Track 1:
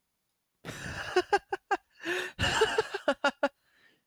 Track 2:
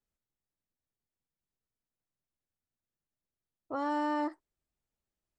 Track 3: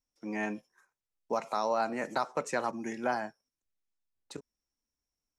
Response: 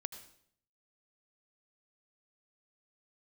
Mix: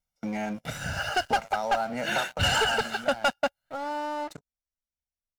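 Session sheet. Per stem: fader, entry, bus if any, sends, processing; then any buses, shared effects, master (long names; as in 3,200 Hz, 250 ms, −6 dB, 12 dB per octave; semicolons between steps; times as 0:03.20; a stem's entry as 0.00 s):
−7.0 dB, 0.00 s, no send, no processing
−12.5 dB, 0.00 s, no send, no processing
0:02.23 −2 dB → 0:02.49 −10.5 dB, 0.00 s, no send, low-shelf EQ 190 Hz +7.5 dB; downward compressor 12 to 1, threshold −37 dBFS, peak gain reduction 13.5 dB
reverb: not used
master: comb filter 1.4 ms, depth 78%; leveller curve on the samples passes 3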